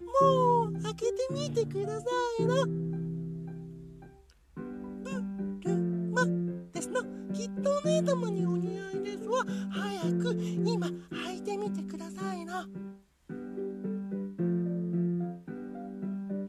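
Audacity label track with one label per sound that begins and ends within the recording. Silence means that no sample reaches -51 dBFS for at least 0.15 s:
4.570000	12.990000	sound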